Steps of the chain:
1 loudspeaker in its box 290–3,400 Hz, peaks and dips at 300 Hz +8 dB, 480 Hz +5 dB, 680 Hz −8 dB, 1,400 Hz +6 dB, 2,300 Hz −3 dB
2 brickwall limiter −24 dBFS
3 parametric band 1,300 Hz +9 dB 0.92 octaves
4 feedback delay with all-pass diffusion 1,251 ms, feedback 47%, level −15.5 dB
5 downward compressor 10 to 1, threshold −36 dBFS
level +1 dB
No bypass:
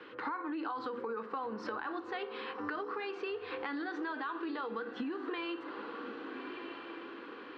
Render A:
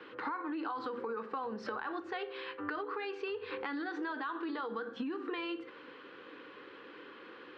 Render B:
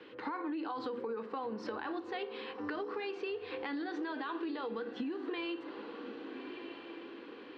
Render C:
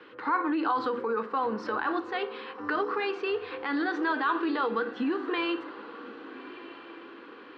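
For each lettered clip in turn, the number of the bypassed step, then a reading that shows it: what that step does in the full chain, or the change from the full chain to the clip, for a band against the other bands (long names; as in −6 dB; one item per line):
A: 4, change in momentary loudness spread +7 LU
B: 3, 2 kHz band −4.0 dB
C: 5, average gain reduction 5.5 dB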